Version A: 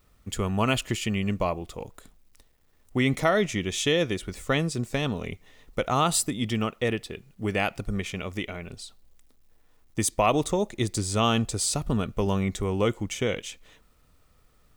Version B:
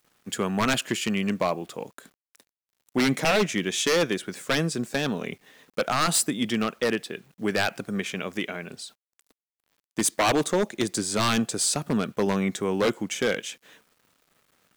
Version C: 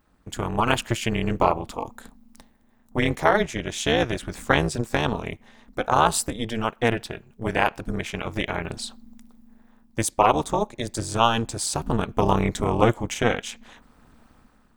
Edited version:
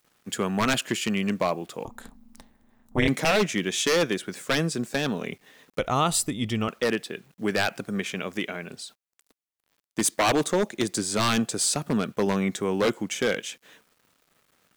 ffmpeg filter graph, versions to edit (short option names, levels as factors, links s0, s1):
-filter_complex "[1:a]asplit=3[s0][s1][s2];[s0]atrim=end=1.852[s3];[2:a]atrim=start=1.848:end=3.082[s4];[s1]atrim=start=3.078:end=5.792[s5];[0:a]atrim=start=5.788:end=6.682[s6];[s2]atrim=start=6.678[s7];[s3][s4]acrossfade=d=0.004:c1=hsin:c2=hsin[s8];[s8][s5]acrossfade=d=0.004:c1=hsin:c2=hsin[s9];[s9][s6]acrossfade=d=0.004:c1=hsin:c2=hsin[s10];[s10][s7]acrossfade=d=0.004:c1=hsin:c2=hsin"